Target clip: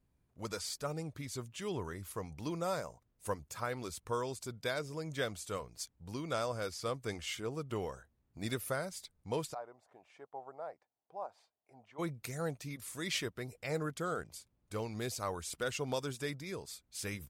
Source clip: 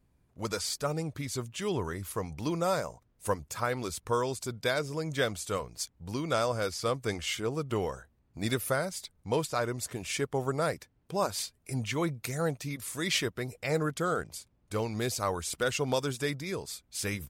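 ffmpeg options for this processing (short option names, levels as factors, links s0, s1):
-filter_complex "[0:a]asplit=3[s0][s1][s2];[s0]afade=t=out:st=9.53:d=0.02[s3];[s1]bandpass=f=760:t=q:w=3.7:csg=0,afade=t=in:st=9.53:d=0.02,afade=t=out:st=11.98:d=0.02[s4];[s2]afade=t=in:st=11.98:d=0.02[s5];[s3][s4][s5]amix=inputs=3:normalize=0,volume=0.447"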